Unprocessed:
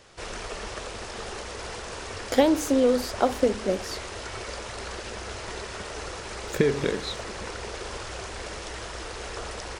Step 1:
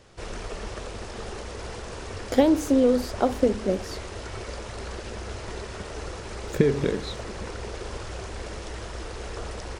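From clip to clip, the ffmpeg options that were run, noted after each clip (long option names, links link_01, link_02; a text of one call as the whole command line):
ffmpeg -i in.wav -af "lowshelf=frequency=470:gain=9,volume=-4dB" out.wav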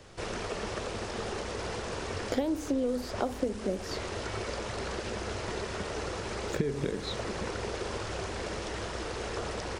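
ffmpeg -i in.wav -filter_complex "[0:a]acrossover=split=85|7000[link_01][link_02][link_03];[link_01]acompressor=threshold=-50dB:ratio=4[link_04];[link_02]acompressor=threshold=-31dB:ratio=4[link_05];[link_03]acompressor=threshold=-58dB:ratio=4[link_06];[link_04][link_05][link_06]amix=inputs=3:normalize=0,volume=2dB" out.wav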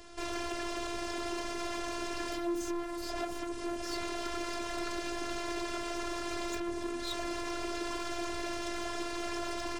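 ffmpeg -i in.wav -af "volume=33.5dB,asoftclip=hard,volume=-33.5dB,afftfilt=real='hypot(re,im)*cos(PI*b)':imag='0':win_size=512:overlap=0.75,volume=4.5dB" out.wav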